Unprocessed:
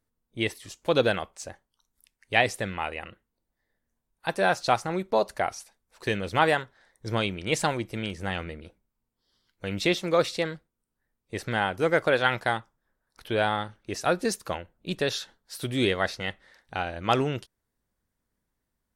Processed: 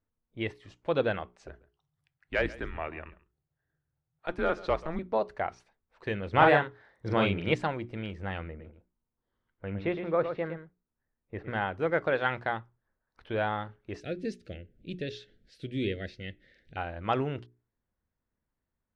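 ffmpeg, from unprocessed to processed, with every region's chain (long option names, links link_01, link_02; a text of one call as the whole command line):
ffmpeg -i in.wav -filter_complex "[0:a]asettb=1/sr,asplit=3[link_01][link_02][link_03];[link_01]atrim=end=1.474[link_04];[link_02]atrim=start=1.47:end=4.99,asetpts=PTS-STARTPTS,afade=type=in:duration=0.004:curve=qsin,afade=type=out:start_time=3.516:duration=0.004:curve=qsin,asoftclip=type=hard:threshold=-13.5dB,afreqshift=-160,aecho=1:1:136:0.112,atrim=end_sample=155232[link_05];[link_03]atrim=start=4.986[link_06];[link_04][link_05]acrossfade=duration=0.004:curve1=hsin:curve2=qsin[link_07];[link_07][link_06]acrossfade=duration=0.004:curve1=qsin:curve2=hsin,asettb=1/sr,asplit=3[link_08][link_09][link_10];[link_08]atrim=end=6.334[link_11];[link_09]atrim=start=6.33:end=7.54,asetpts=PTS-STARTPTS,afade=type=in:duration=0.004:curve=qsin,afade=type=out:start_time=1.206:duration=0.004:curve=qsin,highpass=54,acontrast=42,asplit=2[link_12][link_13];[link_13]adelay=41,volume=-3dB[link_14];[link_12][link_14]amix=inputs=2:normalize=0,atrim=end_sample=53361[link_15];[link_10]atrim=start=7.536[link_16];[link_11][link_15]acrossfade=duration=0.004:curve1=hsin:curve2=qsin[link_17];[link_17][link_16]acrossfade=duration=0.004:curve1=qsin:curve2=hsin,asettb=1/sr,asplit=3[link_18][link_19][link_20];[link_18]atrim=end=8.484[link_21];[link_19]atrim=start=8.48:end=11.53,asetpts=PTS-STARTPTS,afade=type=in:duration=0.004:curve=qsin,afade=type=out:start_time=3.046:duration=0.004:curve=qsin,lowpass=2000,aecho=1:1:112:0.376,atrim=end_sample=134505[link_22];[link_20]atrim=start=11.526[link_23];[link_21][link_22]acrossfade=duration=0.004:curve1=hsin:curve2=qsin[link_24];[link_24][link_23]acrossfade=duration=0.004:curve1=qsin:curve2=hsin,asettb=1/sr,asplit=3[link_25][link_26][link_27];[link_25]atrim=end=14.004[link_28];[link_26]atrim=start=14:end=16.77,asetpts=PTS-STARTPTS,afade=type=in:duration=0.004:curve=qsin,afade=type=out:start_time=2.766:duration=0.004:curve=qsin,acompressor=mode=upward:threshold=-40dB:ratio=2.5:attack=3.2:release=140:knee=2.83:detection=peak,asuperstop=centerf=1000:order=4:qfactor=0.57[link_29];[link_27]atrim=start=16.766[link_30];[link_28][link_29]acrossfade=duration=0.004:curve1=hsin:curve2=qsin[link_31];[link_31][link_30]acrossfade=duration=0.004:curve1=qsin:curve2=hsin,lowpass=2400,equalizer=frequency=81:width_type=o:width=0.9:gain=4,bandreject=frequency=60:width_type=h:width=6,bandreject=frequency=120:width_type=h:width=6,bandreject=frequency=180:width_type=h:width=6,bandreject=frequency=240:width_type=h:width=6,bandreject=frequency=300:width_type=h:width=6,bandreject=frequency=360:width_type=h:width=6,bandreject=frequency=420:width_type=h:width=6,volume=-4.5dB" out.wav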